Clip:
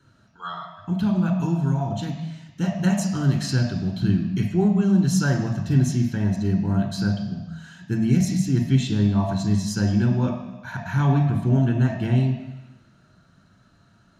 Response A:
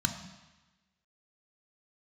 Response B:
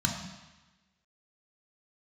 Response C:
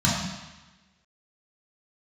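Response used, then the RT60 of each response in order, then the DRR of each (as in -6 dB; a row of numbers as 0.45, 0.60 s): B; 1.1, 1.1, 1.1 s; 6.0, 1.5, -6.0 dB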